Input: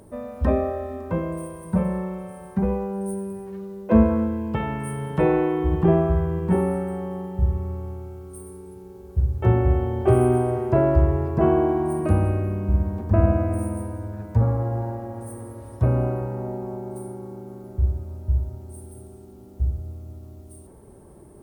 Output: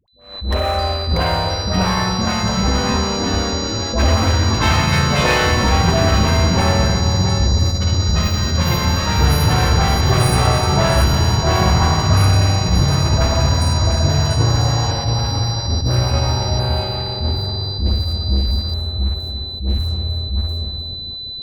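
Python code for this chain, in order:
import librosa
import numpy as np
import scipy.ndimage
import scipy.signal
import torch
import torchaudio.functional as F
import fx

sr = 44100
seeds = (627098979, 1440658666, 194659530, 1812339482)

p1 = fx.spec_quant(x, sr, step_db=15)
p2 = fx.tone_stack(p1, sr, knobs='10-0-10')
p3 = fx.env_lowpass(p2, sr, base_hz=370.0, full_db=-30.0)
p4 = p3 + 10.0 ** (-9.5 / 20.0) * np.pad(p3, (int(690 * sr / 1000.0), 0))[:len(p3)]
p5 = fx.rider(p4, sr, range_db=3, speed_s=0.5)
p6 = p4 + F.gain(torch.from_numpy(p5), 1.0).numpy()
p7 = fx.leveller(p6, sr, passes=5)
p8 = p7 + 10.0 ** (-27.0 / 20.0) * np.sin(2.0 * np.pi * 4000.0 * np.arange(len(p7)) / sr)
p9 = fx.dispersion(p8, sr, late='highs', ms=81.0, hz=580.0)
p10 = p9 + fx.echo_single(p9, sr, ms=304, db=-11.0, dry=0)
p11 = fx.echo_pitch(p10, sr, ms=722, semitones=3, count=3, db_per_echo=-3.0)
p12 = fx.attack_slew(p11, sr, db_per_s=120.0)
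y = F.gain(torch.from_numpy(p12), -1.5).numpy()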